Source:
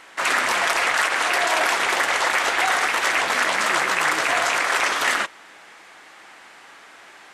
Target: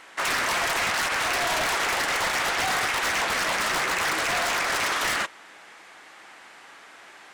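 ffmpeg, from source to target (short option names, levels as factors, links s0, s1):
-af "aeval=exprs='0.133*(abs(mod(val(0)/0.133+3,4)-2)-1)':c=same,volume=0.794"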